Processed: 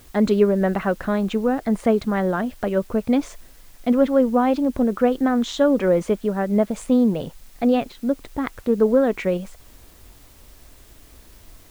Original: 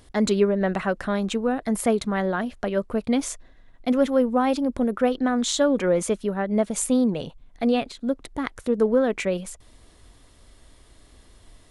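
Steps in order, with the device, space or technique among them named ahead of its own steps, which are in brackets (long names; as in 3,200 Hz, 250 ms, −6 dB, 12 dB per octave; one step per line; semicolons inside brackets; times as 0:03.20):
cassette deck with a dirty head (head-to-tape spacing loss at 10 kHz 21 dB; tape wow and flutter; white noise bed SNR 32 dB)
level +4 dB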